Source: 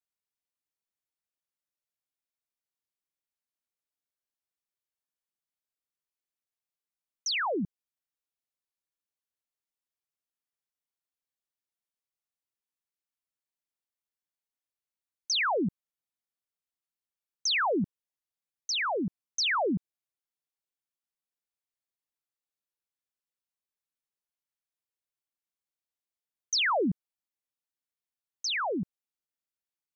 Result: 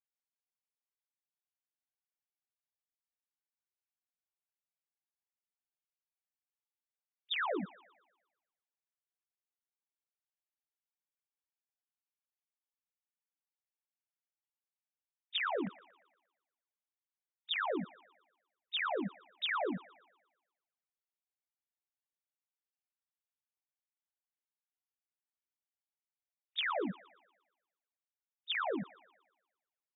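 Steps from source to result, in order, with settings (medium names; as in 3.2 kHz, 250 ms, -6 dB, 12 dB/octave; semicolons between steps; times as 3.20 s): formants replaced by sine waves; compression 10:1, threshold -39 dBFS, peak gain reduction 18.5 dB; feedback echo behind a band-pass 117 ms, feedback 49%, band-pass 1.5 kHz, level -14.5 dB; trim +6 dB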